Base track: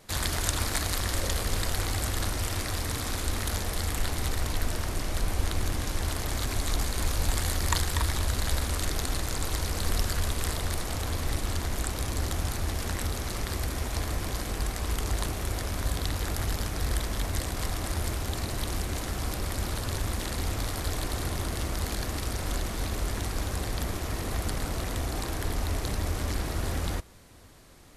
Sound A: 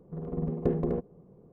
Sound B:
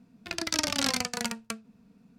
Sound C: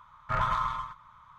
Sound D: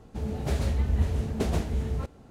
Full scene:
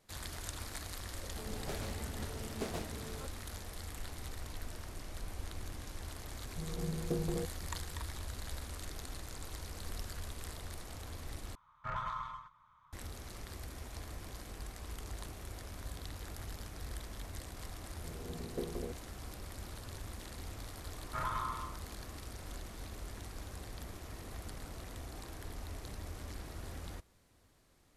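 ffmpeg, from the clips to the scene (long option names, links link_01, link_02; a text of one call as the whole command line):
ffmpeg -i bed.wav -i cue0.wav -i cue1.wav -i cue2.wav -i cue3.wav -filter_complex "[1:a]asplit=2[link_01][link_02];[3:a]asplit=2[link_03][link_04];[0:a]volume=-15dB[link_05];[4:a]highpass=frequency=320:poles=1[link_06];[link_01]aecho=1:1:6.1:0.65[link_07];[link_02]equalizer=frequency=130:width_type=o:width=0.77:gain=-11.5[link_08];[link_05]asplit=2[link_09][link_10];[link_09]atrim=end=11.554[link_11];[link_03]atrim=end=1.38,asetpts=PTS-STARTPTS,volume=-11dB[link_12];[link_10]atrim=start=12.926[link_13];[link_06]atrim=end=2.3,asetpts=PTS-STARTPTS,volume=-7.5dB,afade=type=in:duration=0.004:curve=hsin,afade=type=out:start_time=2.296:duration=0.004:curve=hsin,adelay=1210[link_14];[link_07]atrim=end=1.52,asetpts=PTS-STARTPTS,volume=-10dB,afade=type=in:duration=0.004:curve=hsin,afade=type=out:start_time=1.516:duration=0.004:curve=hsin,adelay=6450[link_15];[link_08]atrim=end=1.52,asetpts=PTS-STARTPTS,volume=-11dB,afade=type=in:duration=0.004:curve=hsin,afade=type=out:start_time=1.516:duration=0.004:curve=hsin,adelay=17920[link_16];[link_04]atrim=end=1.38,asetpts=PTS-STARTPTS,volume=-9.5dB,afade=type=in:duration=0.004:curve=hsin,afade=type=out:start_time=1.376:duration=0.004:curve=hsin,adelay=919044S[link_17];[link_11][link_12]acrossfade=duration=0.004:curve1=hsin:curve2=hsin[link_18];[link_18][link_13]acrossfade=duration=0.004:curve1=hsin:curve2=hsin[link_19];[link_19][link_14][link_15][link_16][link_17]amix=inputs=5:normalize=0" out.wav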